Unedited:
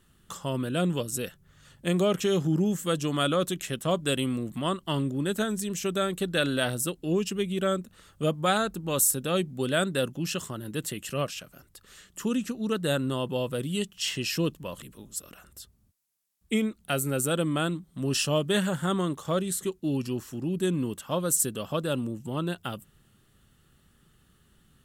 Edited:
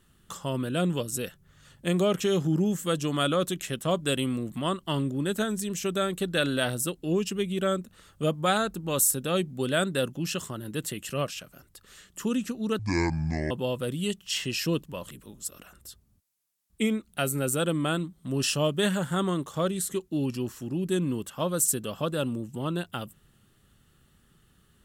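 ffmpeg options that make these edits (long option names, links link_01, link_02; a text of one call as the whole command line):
ffmpeg -i in.wav -filter_complex "[0:a]asplit=3[link_01][link_02][link_03];[link_01]atrim=end=12.794[link_04];[link_02]atrim=start=12.79:end=13.22,asetpts=PTS-STARTPTS,asetrate=26460,aresample=44100[link_05];[link_03]atrim=start=13.216[link_06];[link_04][link_05]acrossfade=duration=0.004:curve1=hsin:curve2=hsin[link_07];[link_07][link_06]acrossfade=duration=0.004:curve1=hsin:curve2=hsin" out.wav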